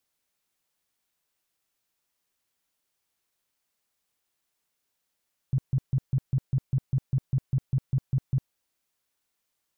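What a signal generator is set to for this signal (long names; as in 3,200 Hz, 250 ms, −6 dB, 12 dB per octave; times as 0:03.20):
tone bursts 133 Hz, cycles 7, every 0.20 s, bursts 15, −20 dBFS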